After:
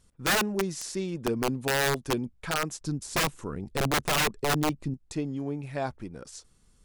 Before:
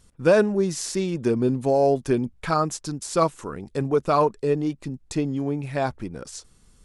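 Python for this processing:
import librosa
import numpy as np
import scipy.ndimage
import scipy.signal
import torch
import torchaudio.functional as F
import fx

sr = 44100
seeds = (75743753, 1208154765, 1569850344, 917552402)

y = fx.low_shelf(x, sr, hz=320.0, db=9.5, at=(2.81, 4.94))
y = (np.mod(10.0 ** (13.0 / 20.0) * y + 1.0, 2.0) - 1.0) / 10.0 ** (13.0 / 20.0)
y = y * librosa.db_to_amplitude(-6.5)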